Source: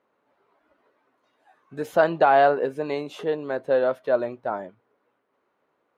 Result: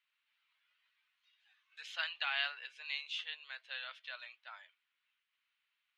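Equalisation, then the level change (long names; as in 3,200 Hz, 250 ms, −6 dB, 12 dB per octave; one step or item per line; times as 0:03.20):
four-pole ladder high-pass 2,400 Hz, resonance 40%
high-frequency loss of the air 150 metres
+10.5 dB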